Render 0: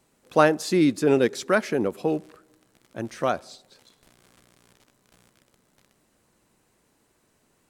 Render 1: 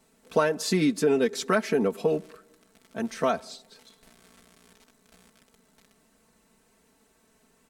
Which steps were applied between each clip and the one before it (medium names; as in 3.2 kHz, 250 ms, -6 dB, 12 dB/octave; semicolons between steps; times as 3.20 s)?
comb 4.5 ms, depth 81%; compression 6:1, threshold -19 dBFS, peak gain reduction 9 dB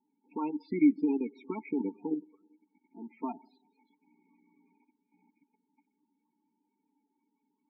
level held to a coarse grid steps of 12 dB; vowel filter u; loudest bins only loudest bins 16; trim +6.5 dB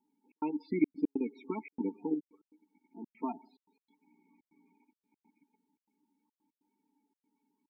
trance gate "xxx.xxxx.x.xx" 143 bpm -60 dB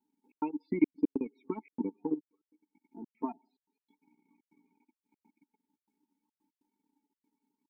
transient shaper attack +6 dB, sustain -9 dB; trim -3.5 dB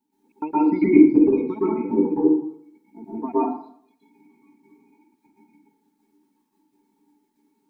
plate-style reverb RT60 0.64 s, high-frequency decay 0.55×, pre-delay 105 ms, DRR -10 dB; trim +4.5 dB